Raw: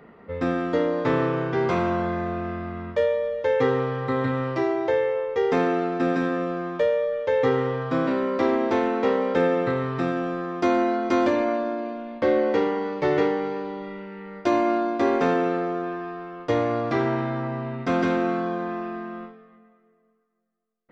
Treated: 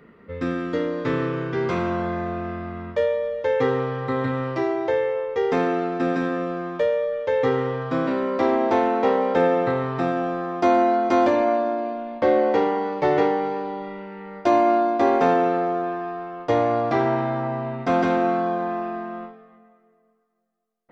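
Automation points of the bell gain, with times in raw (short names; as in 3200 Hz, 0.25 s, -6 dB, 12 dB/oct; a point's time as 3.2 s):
bell 760 Hz 0.68 oct
1.36 s -10 dB
2.14 s +1 dB
8.08 s +1 dB
8.66 s +8 dB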